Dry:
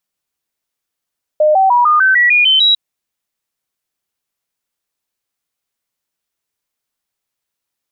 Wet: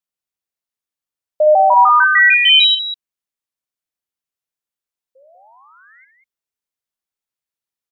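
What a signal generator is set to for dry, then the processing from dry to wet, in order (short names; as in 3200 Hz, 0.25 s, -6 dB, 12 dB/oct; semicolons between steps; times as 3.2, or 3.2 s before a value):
stepped sine 610 Hz up, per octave 3, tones 9, 0.15 s, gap 0.00 s -7 dBFS
painted sound rise, 5.15–6.05, 510–2200 Hz -37 dBFS; loudspeakers at several distances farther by 22 m -11 dB, 66 m -8 dB; upward expander 1.5:1, over -30 dBFS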